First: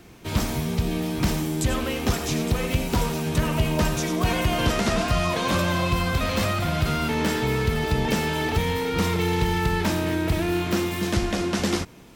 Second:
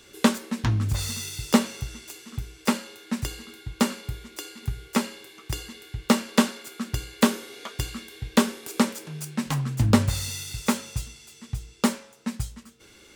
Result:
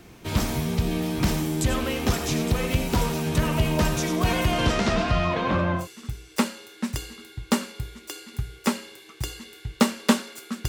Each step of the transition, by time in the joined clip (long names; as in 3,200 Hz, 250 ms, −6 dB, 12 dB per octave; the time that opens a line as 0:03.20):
first
0:04.51–0:05.88: low-pass filter 11,000 Hz → 1,200 Hz
0:05.81: continue with second from 0:02.10, crossfade 0.14 s